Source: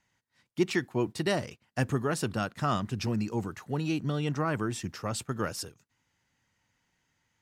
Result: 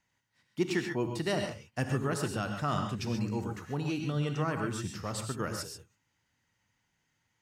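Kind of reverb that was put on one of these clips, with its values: non-linear reverb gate 0.16 s rising, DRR 4 dB; gain -3.5 dB

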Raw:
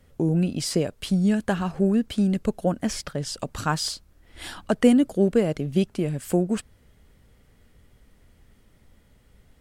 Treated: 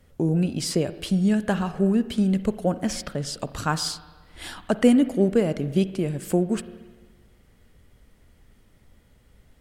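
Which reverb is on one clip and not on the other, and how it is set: spring tank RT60 1.4 s, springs 42/57 ms, chirp 25 ms, DRR 13.5 dB

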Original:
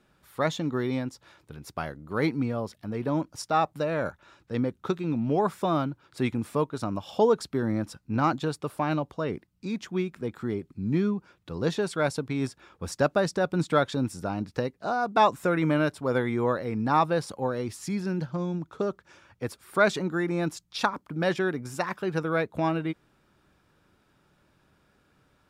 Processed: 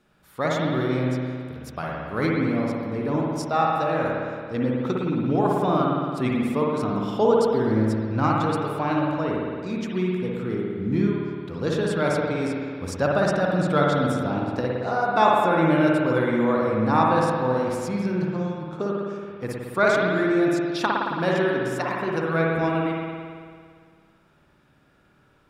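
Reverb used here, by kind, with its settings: spring tank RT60 2 s, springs 55 ms, chirp 80 ms, DRR -3 dB

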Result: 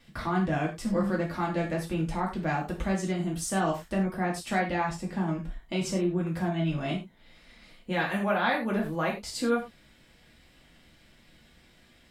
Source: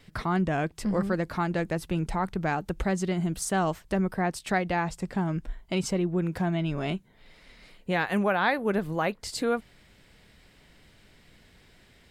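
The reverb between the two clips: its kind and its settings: non-linear reverb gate 0.13 s falling, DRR -2.5 dB; gain -5.5 dB

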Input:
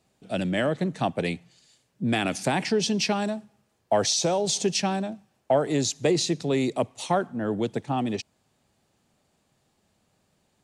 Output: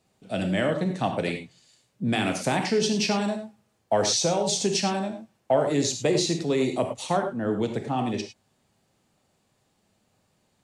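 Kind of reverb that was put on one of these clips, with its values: non-linear reverb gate 0.13 s flat, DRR 4 dB; gain -1 dB

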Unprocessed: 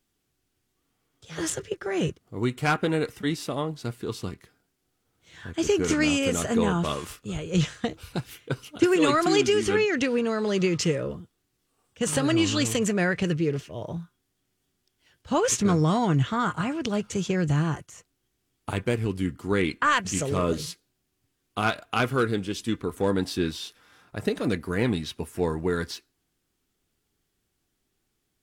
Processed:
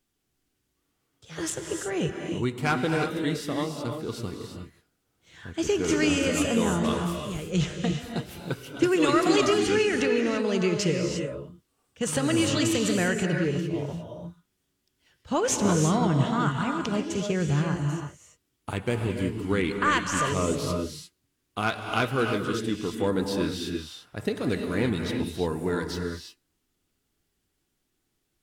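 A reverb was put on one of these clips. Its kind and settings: non-linear reverb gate 0.37 s rising, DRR 3.5 dB; gain -2 dB

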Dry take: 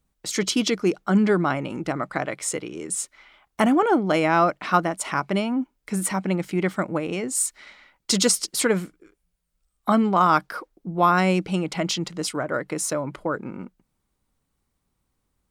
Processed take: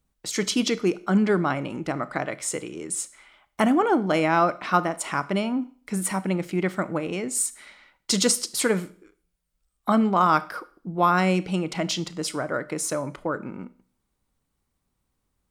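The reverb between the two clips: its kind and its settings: Schroeder reverb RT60 0.46 s, combs from 25 ms, DRR 15.5 dB; gain -1.5 dB

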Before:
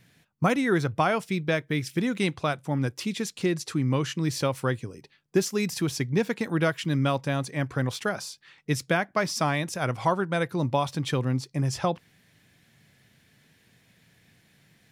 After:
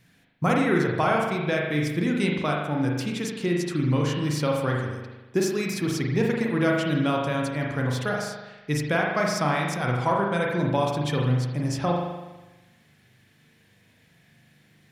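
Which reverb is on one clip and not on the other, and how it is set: spring tank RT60 1.1 s, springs 40 ms, chirp 40 ms, DRR -1 dB; gain -1.5 dB

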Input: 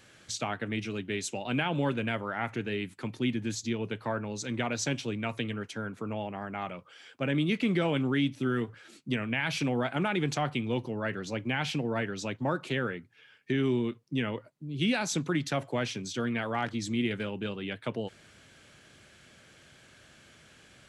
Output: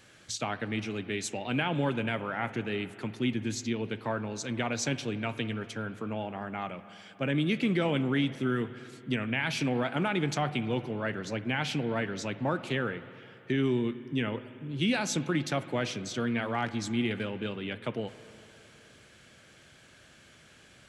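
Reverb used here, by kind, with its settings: spring tank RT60 3 s, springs 51/55 ms, chirp 60 ms, DRR 13.5 dB

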